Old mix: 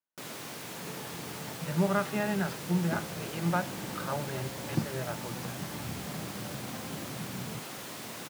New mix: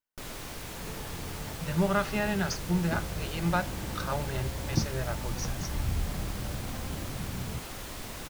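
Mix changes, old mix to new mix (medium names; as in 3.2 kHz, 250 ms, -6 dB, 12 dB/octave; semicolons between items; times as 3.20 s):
speech: remove distance through air 350 m; master: remove high-pass 130 Hz 24 dB/octave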